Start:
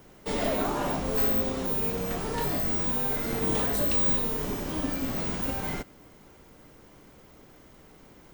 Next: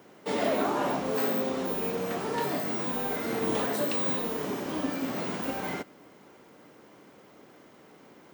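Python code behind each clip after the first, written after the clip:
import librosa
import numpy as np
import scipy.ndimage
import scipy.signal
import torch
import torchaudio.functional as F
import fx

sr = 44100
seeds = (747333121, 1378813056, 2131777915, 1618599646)

y = scipy.signal.sosfilt(scipy.signal.butter(2, 210.0, 'highpass', fs=sr, output='sos'), x)
y = fx.high_shelf(y, sr, hz=4800.0, db=-8.0)
y = y * 10.0 ** (2.0 / 20.0)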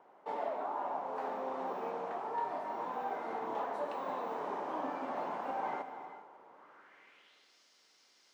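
y = fx.filter_sweep_bandpass(x, sr, from_hz=860.0, to_hz=5000.0, start_s=6.5, end_s=7.54, q=2.7)
y = fx.rev_gated(y, sr, seeds[0], gate_ms=460, shape='flat', drr_db=8.5)
y = fx.rider(y, sr, range_db=10, speed_s=0.5)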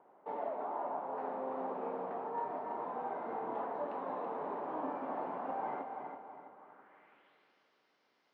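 y = fx.spacing_loss(x, sr, db_at_10k=39)
y = fx.echo_feedback(y, sr, ms=329, feedback_pct=38, wet_db=-7.5)
y = y * 10.0 ** (1.0 / 20.0)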